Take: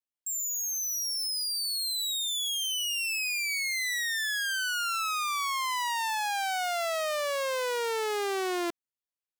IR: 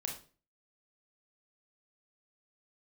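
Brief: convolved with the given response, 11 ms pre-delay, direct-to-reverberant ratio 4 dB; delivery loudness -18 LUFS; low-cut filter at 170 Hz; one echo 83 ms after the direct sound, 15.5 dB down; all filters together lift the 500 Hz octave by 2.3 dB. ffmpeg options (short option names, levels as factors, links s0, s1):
-filter_complex "[0:a]highpass=170,equalizer=f=500:t=o:g=3,aecho=1:1:83:0.168,asplit=2[s0][s1];[1:a]atrim=start_sample=2205,adelay=11[s2];[s1][s2]afir=irnorm=-1:irlink=0,volume=0.596[s3];[s0][s3]amix=inputs=2:normalize=0,volume=2.82"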